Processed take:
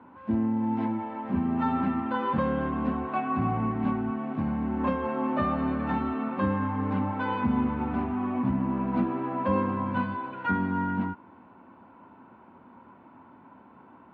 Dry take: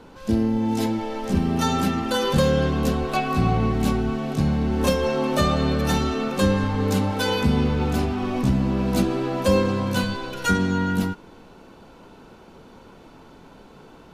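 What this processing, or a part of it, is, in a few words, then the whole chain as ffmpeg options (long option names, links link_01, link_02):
bass cabinet: -af "highpass=frequency=85:width=0.5412,highpass=frequency=85:width=1.3066,equalizer=frequency=150:width_type=q:width=4:gain=-7,equalizer=frequency=250:width_type=q:width=4:gain=6,equalizer=frequency=450:width_type=q:width=4:gain=-9,equalizer=frequency=990:width_type=q:width=4:gain=9,lowpass=frequency=2200:width=0.5412,lowpass=frequency=2200:width=1.3066,volume=-6.5dB"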